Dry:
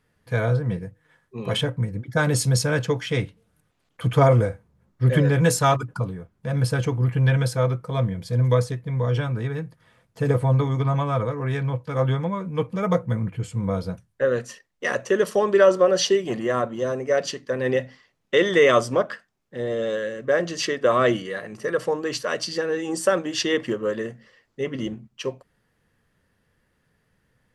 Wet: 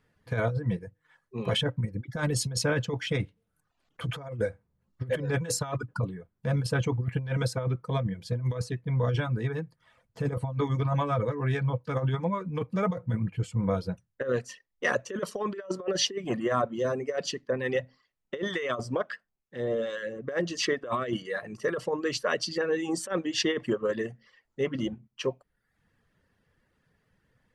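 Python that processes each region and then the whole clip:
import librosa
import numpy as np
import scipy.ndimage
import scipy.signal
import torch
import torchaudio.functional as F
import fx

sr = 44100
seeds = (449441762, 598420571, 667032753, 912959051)

y = fx.chain(x, sr, fx.harmonic_tremolo(hz=2.2, depth_pct=50, crossover_hz=1100.0),
    fx.high_shelf(hz=10000.0, db=-4.5), at=(17.47, 20.27))
y = fx.dereverb_blind(y, sr, rt60_s=0.65)
y = fx.high_shelf(y, sr, hz=9200.0, db=-10.5)
y = fx.over_compress(y, sr, threshold_db=-23.0, ratio=-0.5)
y = y * librosa.db_to_amplitude(-3.5)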